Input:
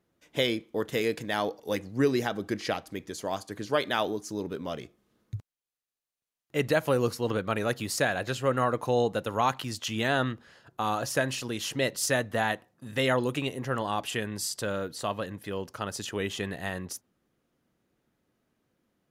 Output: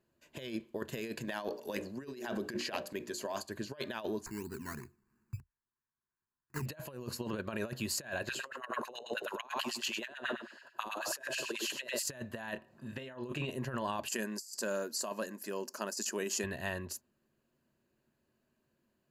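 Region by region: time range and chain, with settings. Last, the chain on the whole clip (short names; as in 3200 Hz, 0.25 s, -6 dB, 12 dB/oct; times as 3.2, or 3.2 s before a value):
1.27–3.42 HPF 180 Hz + notches 60/120/180/240/300/360/420/480/540/600 Hz + transient shaper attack +2 dB, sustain +6 dB
4.26–6.66 decimation with a swept rate 14×, swing 60% 3 Hz + fixed phaser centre 1400 Hz, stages 4
8.29–12.03 notches 60/120/180/240/300/360/420 Hz + feedback echo 98 ms, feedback 26%, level -9 dB + LFO high-pass sine 9.2 Hz 280–2400 Hz
12.53–13.51 upward compressor, threshold -46 dBFS + high shelf 6200 Hz -11 dB + doubler 27 ms -8.5 dB
14.08–16.44 brick-wall FIR high-pass 180 Hz + resonant high shelf 4400 Hz +7.5 dB, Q 3
whole clip: ripple EQ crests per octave 1.4, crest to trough 8 dB; negative-ratio compressor -30 dBFS, ratio -0.5; gain -7.5 dB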